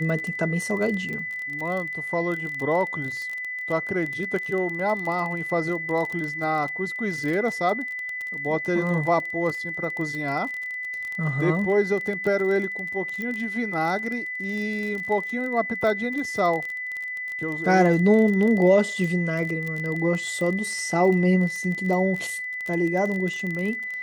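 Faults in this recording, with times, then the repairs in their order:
crackle 27 per s -28 dBFS
whine 2 kHz -29 dBFS
13.22 s: pop -19 dBFS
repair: de-click; band-stop 2 kHz, Q 30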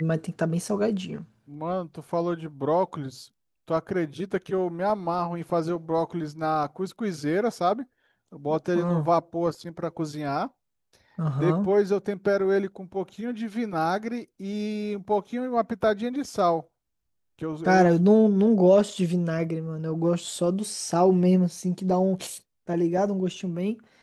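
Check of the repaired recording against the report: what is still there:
nothing left

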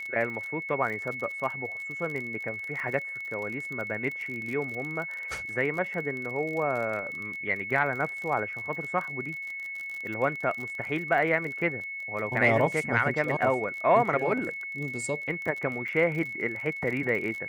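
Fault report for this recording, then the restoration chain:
crackle 39 per s -34 dBFS
whine 2.2 kHz -34 dBFS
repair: de-click; band-stop 2.2 kHz, Q 30

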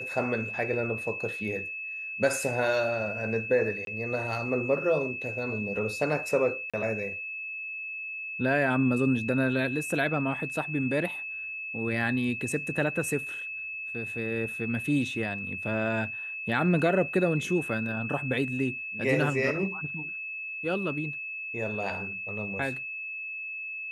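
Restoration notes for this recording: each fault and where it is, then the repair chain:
whine 2.6 kHz -34 dBFS
3.85–3.87 s: dropout 22 ms
6.70–6.74 s: dropout 36 ms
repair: band-stop 2.6 kHz, Q 30; interpolate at 3.85 s, 22 ms; interpolate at 6.70 s, 36 ms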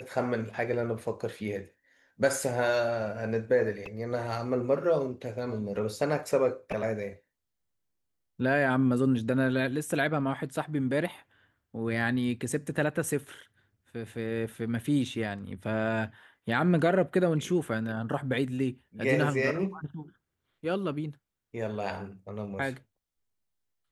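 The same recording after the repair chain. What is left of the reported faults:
nothing left

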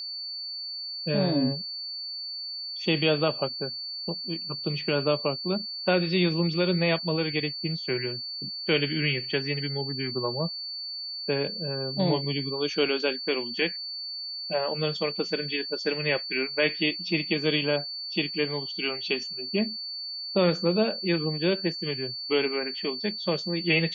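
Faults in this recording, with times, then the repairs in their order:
whine 4.5 kHz -33 dBFS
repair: band-stop 4.5 kHz, Q 30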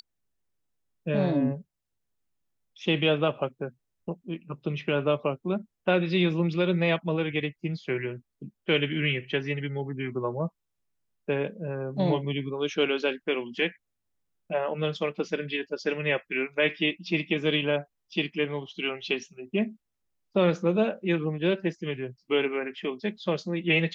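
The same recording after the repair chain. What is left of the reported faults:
nothing left

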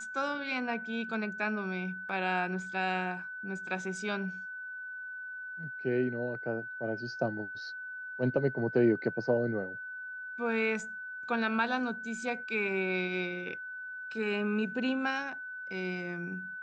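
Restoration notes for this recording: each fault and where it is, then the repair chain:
whine 1.5 kHz -39 dBFS
2.09 s: dropout 2.1 ms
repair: band-stop 1.5 kHz, Q 30; interpolate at 2.09 s, 2.1 ms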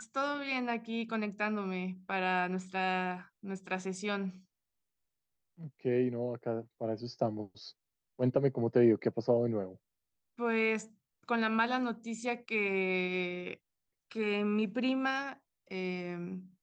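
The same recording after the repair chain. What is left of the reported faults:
nothing left

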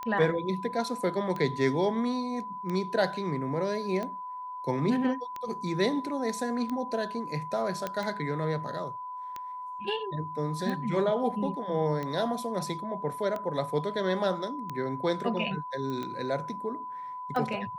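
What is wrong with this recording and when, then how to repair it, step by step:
tick 45 rpm -22 dBFS
whine 1 kHz -36 dBFS
7.87 s: pop -17 dBFS
15.90 s: pop -25 dBFS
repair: de-click; band-stop 1 kHz, Q 30

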